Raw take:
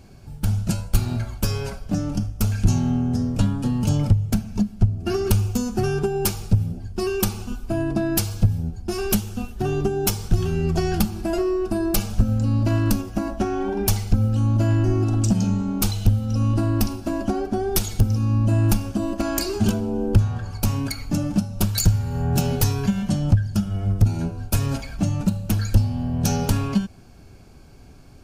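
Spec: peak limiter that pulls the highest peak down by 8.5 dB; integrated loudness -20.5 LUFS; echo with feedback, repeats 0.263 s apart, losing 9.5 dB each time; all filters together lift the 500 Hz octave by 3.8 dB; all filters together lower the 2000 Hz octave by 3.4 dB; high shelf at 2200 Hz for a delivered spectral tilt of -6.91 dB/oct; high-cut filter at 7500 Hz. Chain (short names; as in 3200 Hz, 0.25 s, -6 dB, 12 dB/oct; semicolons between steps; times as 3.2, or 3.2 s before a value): LPF 7500 Hz; bell 500 Hz +6 dB; bell 2000 Hz -7.5 dB; high shelf 2200 Hz +3.5 dB; limiter -15 dBFS; feedback echo 0.263 s, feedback 33%, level -9.5 dB; gain +3.5 dB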